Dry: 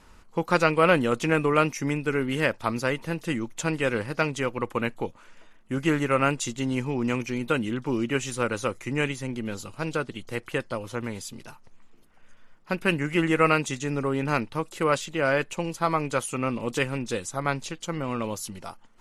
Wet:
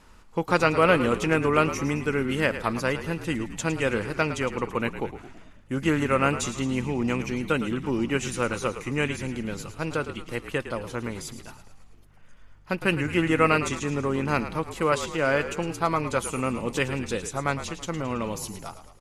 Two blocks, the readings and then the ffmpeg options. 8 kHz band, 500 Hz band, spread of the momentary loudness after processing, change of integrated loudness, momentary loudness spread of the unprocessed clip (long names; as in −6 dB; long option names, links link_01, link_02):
+0.5 dB, +0.5 dB, 11 LU, +0.5 dB, 11 LU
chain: -filter_complex "[0:a]asplit=7[link_01][link_02][link_03][link_04][link_05][link_06][link_07];[link_02]adelay=109,afreqshift=-49,volume=-11.5dB[link_08];[link_03]adelay=218,afreqshift=-98,volume=-16.5dB[link_09];[link_04]adelay=327,afreqshift=-147,volume=-21.6dB[link_10];[link_05]adelay=436,afreqshift=-196,volume=-26.6dB[link_11];[link_06]adelay=545,afreqshift=-245,volume=-31.6dB[link_12];[link_07]adelay=654,afreqshift=-294,volume=-36.7dB[link_13];[link_01][link_08][link_09][link_10][link_11][link_12][link_13]amix=inputs=7:normalize=0"